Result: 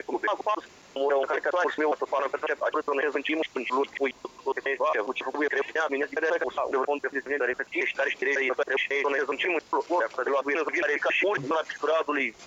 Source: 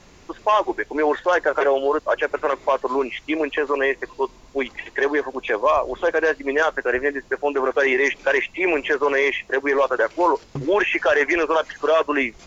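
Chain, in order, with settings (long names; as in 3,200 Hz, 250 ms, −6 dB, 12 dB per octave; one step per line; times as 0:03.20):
slices reordered back to front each 137 ms, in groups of 7
high-pass filter 350 Hz 6 dB per octave
brickwall limiter −17 dBFS, peak gain reduction 9.5 dB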